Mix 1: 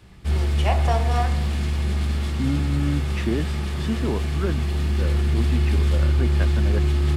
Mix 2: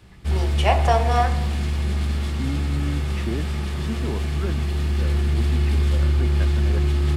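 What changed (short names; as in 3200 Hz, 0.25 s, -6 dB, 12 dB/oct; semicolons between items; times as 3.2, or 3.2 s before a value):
first voice +5.5 dB; second voice -4.5 dB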